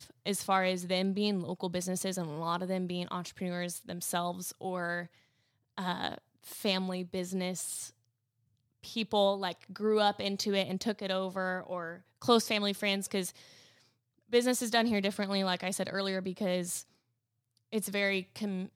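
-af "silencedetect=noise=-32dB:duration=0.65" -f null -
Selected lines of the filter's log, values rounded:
silence_start: 5.01
silence_end: 5.78 | silence_duration: 0.76
silence_start: 7.84
silence_end: 8.96 | silence_duration: 1.12
silence_start: 13.29
silence_end: 14.33 | silence_duration: 1.05
silence_start: 16.79
silence_end: 17.73 | silence_duration: 0.94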